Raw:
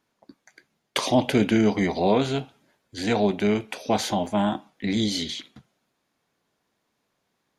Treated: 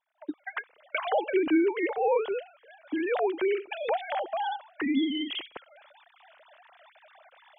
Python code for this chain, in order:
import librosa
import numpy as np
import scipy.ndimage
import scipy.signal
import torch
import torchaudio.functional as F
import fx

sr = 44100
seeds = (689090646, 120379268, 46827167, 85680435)

y = fx.sine_speech(x, sr)
y = fx.recorder_agc(y, sr, target_db=-19.0, rise_db_per_s=54.0, max_gain_db=30)
y = y * librosa.db_to_amplitude(-5.0)